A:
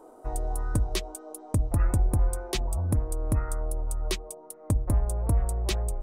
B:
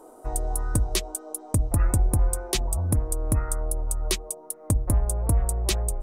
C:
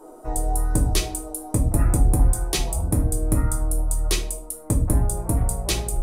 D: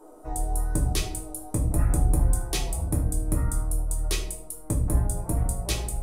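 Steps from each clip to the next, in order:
peaking EQ 11 kHz +8 dB 1.7 oct; trim +2 dB
reverberation RT60 0.45 s, pre-delay 6 ms, DRR -0.5 dB
simulated room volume 87 m³, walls mixed, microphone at 0.36 m; trim -5.5 dB

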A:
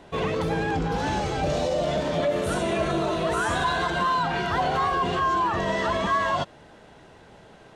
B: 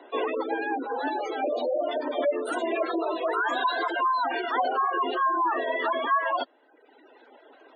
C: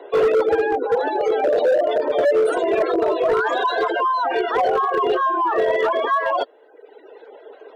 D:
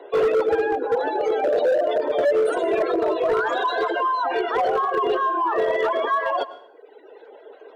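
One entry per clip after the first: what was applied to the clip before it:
reverb removal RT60 1.2 s; steep high-pass 250 Hz 96 dB/octave; spectral gate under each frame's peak -20 dB strong; trim +1 dB
in parallel at -5.5 dB: saturation -22.5 dBFS, distortion -16 dB; on the sum: resonant high-pass 440 Hz, resonance Q 4.9; hard clipper -13 dBFS, distortion -16 dB
plate-style reverb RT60 0.65 s, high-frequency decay 0.85×, pre-delay 90 ms, DRR 15 dB; trim -2.5 dB

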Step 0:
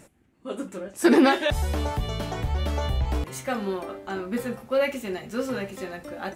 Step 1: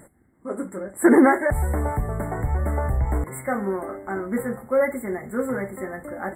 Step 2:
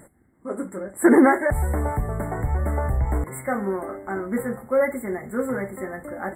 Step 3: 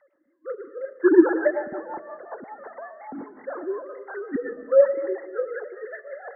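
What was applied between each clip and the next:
FFT band-reject 2.2–7.3 kHz; trim +3 dB
no audible change
formants replaced by sine waves; reverberation RT60 1.3 s, pre-delay 60 ms, DRR 11 dB; rotary cabinet horn 5.5 Hz

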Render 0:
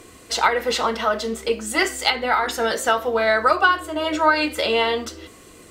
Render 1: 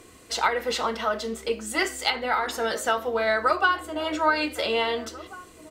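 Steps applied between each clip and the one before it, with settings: echo from a far wall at 290 m, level -16 dB; trim -5 dB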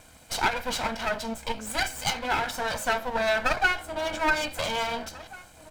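comb filter that takes the minimum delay 1.3 ms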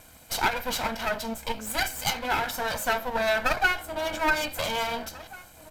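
peaking EQ 13 kHz +12.5 dB 0.28 oct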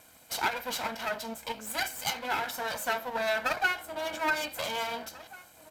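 high-pass 220 Hz 6 dB/octave; trim -4 dB

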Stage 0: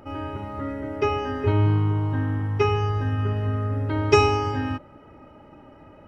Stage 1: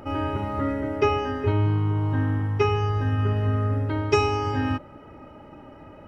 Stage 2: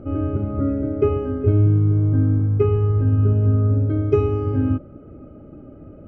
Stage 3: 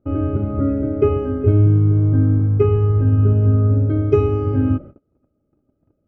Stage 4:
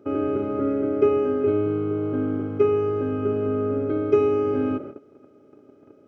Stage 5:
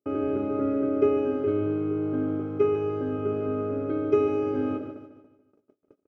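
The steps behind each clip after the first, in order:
gain riding within 5 dB 0.5 s
boxcar filter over 48 samples; trim +7 dB
gate -35 dBFS, range -30 dB; trim +2.5 dB
spectral levelling over time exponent 0.6; high-pass 310 Hz 12 dB/octave; trim -2.5 dB
gate -47 dBFS, range -33 dB; on a send: feedback delay 148 ms, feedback 43%, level -10 dB; on the sum: trim -3.5 dB

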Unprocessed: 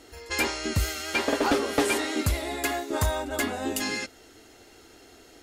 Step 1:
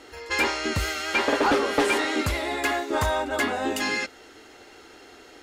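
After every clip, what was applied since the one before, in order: band-stop 670 Hz, Q 12; overdrive pedal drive 11 dB, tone 2.2 kHz, clips at -14 dBFS; trim +2.5 dB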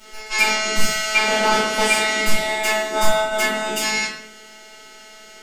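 treble shelf 2.6 kHz +9.5 dB; robot voice 216 Hz; simulated room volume 100 m³, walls mixed, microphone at 2.6 m; trim -5 dB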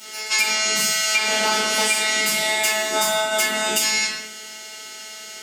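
high-pass 110 Hz 24 dB/octave; treble shelf 2.5 kHz +11.5 dB; compression, threshold -17 dBFS, peak gain reduction 10.5 dB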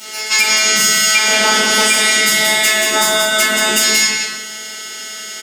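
saturation -9 dBFS, distortion -23 dB; on a send: delay 181 ms -4.5 dB; on the sum: trim +7 dB

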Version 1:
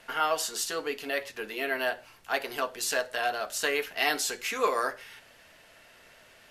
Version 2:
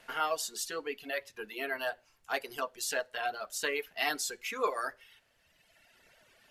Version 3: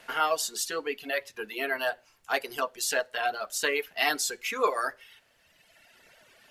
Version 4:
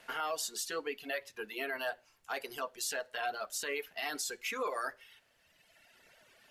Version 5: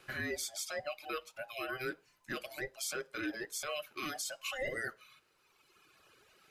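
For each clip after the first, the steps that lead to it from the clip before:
reverb removal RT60 1.8 s; trim -4 dB
bass shelf 100 Hz -6.5 dB; trim +5.5 dB
peak limiter -21 dBFS, peak gain reduction 10 dB; trim -5 dB
every band turned upside down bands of 1 kHz; trim -2 dB

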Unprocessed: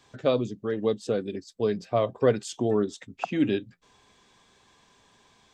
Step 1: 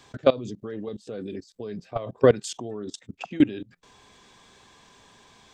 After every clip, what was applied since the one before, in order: level held to a coarse grid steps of 21 dB; trim +8 dB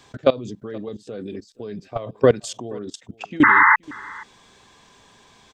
painted sound noise, 3.43–3.76 s, 850–2100 Hz -15 dBFS; delay 476 ms -23 dB; trim +2 dB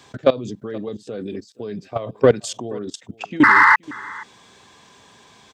high-pass 79 Hz; in parallel at -5 dB: saturation -13.5 dBFS, distortion -10 dB; on the sum: trim -1 dB

